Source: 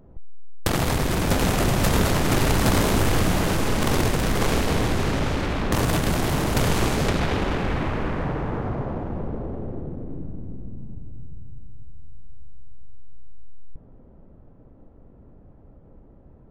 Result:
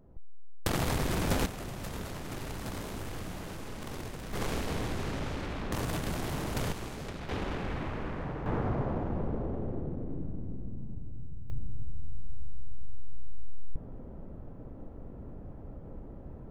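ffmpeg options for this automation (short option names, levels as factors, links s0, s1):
-af "asetnsamples=n=441:p=0,asendcmd='1.46 volume volume -19dB;4.33 volume volume -11.5dB;6.72 volume volume -18dB;7.29 volume volume -10.5dB;8.46 volume volume -3.5dB;11.5 volume volume 5dB',volume=0.422"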